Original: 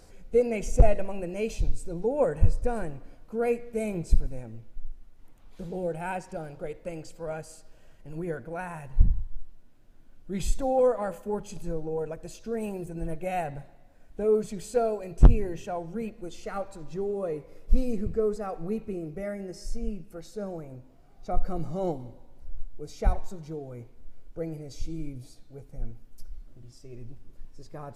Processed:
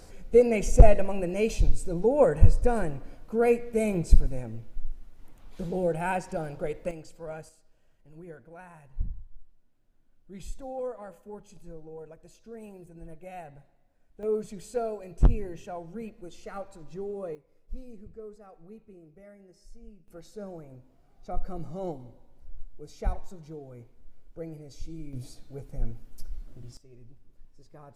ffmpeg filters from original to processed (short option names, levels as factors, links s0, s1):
-af "asetnsamples=n=441:p=0,asendcmd='6.91 volume volume -4dB;7.49 volume volume -12dB;14.23 volume volume -5dB;17.35 volume volume -17dB;20.08 volume volume -5dB;25.13 volume volume 4dB;26.77 volume volume -9dB',volume=1.58"